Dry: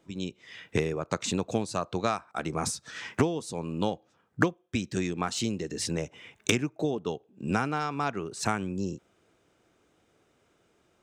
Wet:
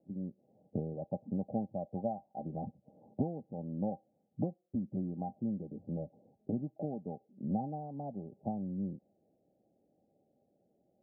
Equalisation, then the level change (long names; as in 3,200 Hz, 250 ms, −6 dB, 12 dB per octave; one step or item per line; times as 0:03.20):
low-shelf EQ 80 Hz −11 dB
dynamic equaliser 390 Hz, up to −6 dB, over −41 dBFS, Q 1.1
Chebyshev low-pass with heavy ripple 820 Hz, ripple 9 dB
+1.0 dB